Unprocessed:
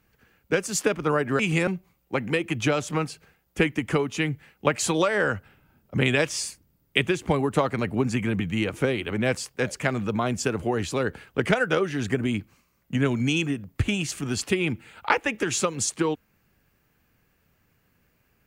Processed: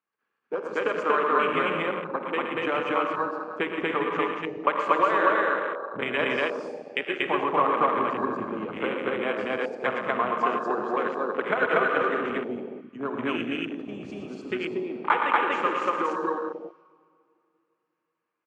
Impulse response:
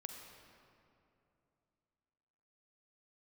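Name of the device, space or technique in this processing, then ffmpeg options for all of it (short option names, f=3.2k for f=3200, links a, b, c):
station announcement: -filter_complex "[0:a]highpass=340,lowpass=4k,equalizer=f=1.1k:t=o:w=0.53:g=11,bandreject=f=50:t=h:w=6,bandreject=f=100:t=h:w=6,bandreject=f=150:t=h:w=6,aecho=1:1:116.6|236.2:0.398|1[a];[1:a]atrim=start_sample=2205[b];[a][b]afir=irnorm=-1:irlink=0,afwtdn=0.0355"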